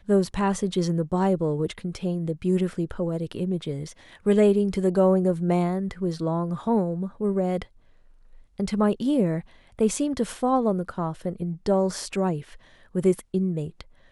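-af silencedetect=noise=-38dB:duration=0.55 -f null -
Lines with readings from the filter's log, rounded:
silence_start: 7.63
silence_end: 8.59 | silence_duration: 0.96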